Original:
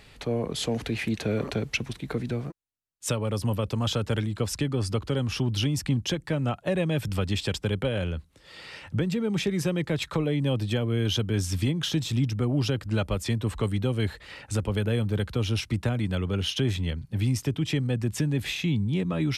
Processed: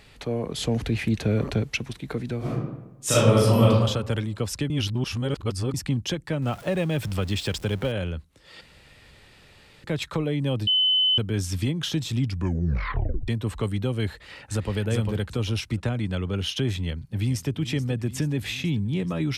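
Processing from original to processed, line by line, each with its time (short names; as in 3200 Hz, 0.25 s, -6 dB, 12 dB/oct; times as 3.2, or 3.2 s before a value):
0.57–1.63 low shelf 160 Hz +10.5 dB
2.38–3.7 reverb throw, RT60 1 s, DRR -10.5 dB
4.7–5.74 reverse
6.42–7.92 zero-crossing step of -39 dBFS
8.61–9.84 room tone
10.67–11.18 bleep 3030 Hz -17.5 dBFS
12.2 tape stop 1.08 s
14.11–14.76 echo throw 0.4 s, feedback 25%, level -3.5 dB
15.77–16.34 LPF 9600 Hz
16.86–17.53 echo throw 0.43 s, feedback 75%, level -13.5 dB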